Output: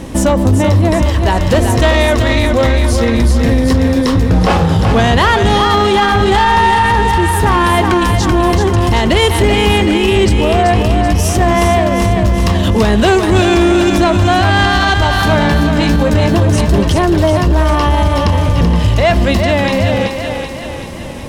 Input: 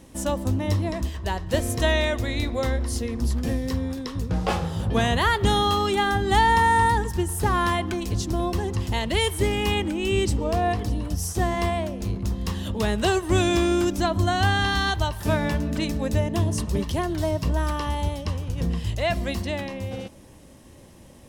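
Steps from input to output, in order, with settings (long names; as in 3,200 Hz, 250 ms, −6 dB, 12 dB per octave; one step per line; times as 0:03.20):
high-shelf EQ 5,500 Hz −10 dB
in parallel at −1.5 dB: downward compressor, threshold −33 dBFS, peak gain reduction 17 dB
on the sum: soft clipping −17 dBFS, distortion −15 dB
0:15.57–0:16.11: double-tracking delay 17 ms −5 dB
feedback echo with a high-pass in the loop 382 ms, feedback 57%, high-pass 400 Hz, level −5 dB
boost into a limiter +20 dB
level −3 dB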